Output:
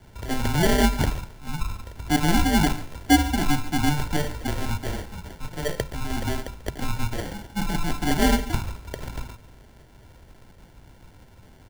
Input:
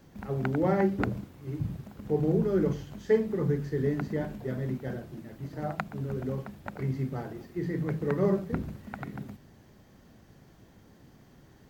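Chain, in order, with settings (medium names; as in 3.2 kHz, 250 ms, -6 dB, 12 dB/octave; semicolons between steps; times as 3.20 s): sample-and-hold 33×; delay 141 ms -17.5 dB; frequency shift -150 Hz; trim +6.5 dB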